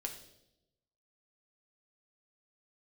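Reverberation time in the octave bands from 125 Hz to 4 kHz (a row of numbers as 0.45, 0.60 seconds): 1.2, 1.1, 1.0, 0.70, 0.65, 0.80 seconds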